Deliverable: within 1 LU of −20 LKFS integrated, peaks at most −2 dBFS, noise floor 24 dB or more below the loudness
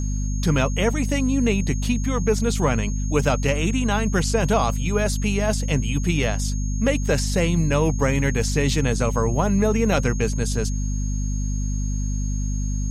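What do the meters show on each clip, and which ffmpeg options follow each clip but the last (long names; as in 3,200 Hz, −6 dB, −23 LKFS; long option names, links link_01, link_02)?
mains hum 50 Hz; hum harmonics up to 250 Hz; level of the hum −21 dBFS; interfering tone 6,500 Hz; level of the tone −37 dBFS; integrated loudness −22.5 LKFS; sample peak −6.5 dBFS; target loudness −20.0 LKFS
→ -af "bandreject=frequency=50:width_type=h:width=4,bandreject=frequency=100:width_type=h:width=4,bandreject=frequency=150:width_type=h:width=4,bandreject=frequency=200:width_type=h:width=4,bandreject=frequency=250:width_type=h:width=4"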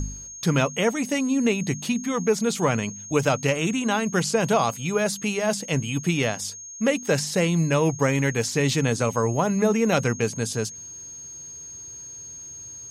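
mains hum none found; interfering tone 6,500 Hz; level of the tone −37 dBFS
→ -af "bandreject=frequency=6500:width=30"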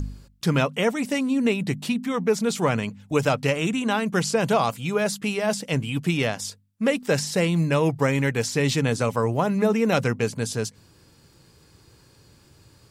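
interfering tone none found; integrated loudness −24.0 LKFS; sample peak −8.0 dBFS; target loudness −20.0 LKFS
→ -af "volume=4dB"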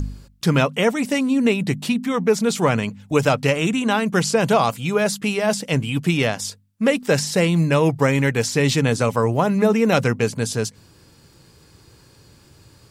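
integrated loudness −20.0 LKFS; sample peak −4.0 dBFS; background noise floor −52 dBFS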